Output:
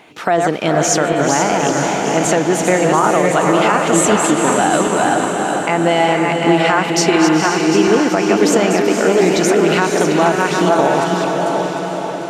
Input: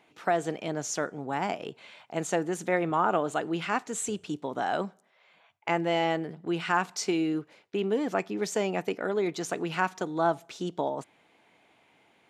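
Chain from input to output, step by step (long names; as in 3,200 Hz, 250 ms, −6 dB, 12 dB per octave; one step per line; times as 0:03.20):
feedback delay that plays each chunk backwards 375 ms, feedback 49%, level −5.5 dB
downward compressor 3 to 1, threshold −29 dBFS, peak gain reduction 8 dB
feedback delay with all-pass diffusion 489 ms, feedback 57%, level −4.5 dB
boost into a limiter +19 dB
level −1 dB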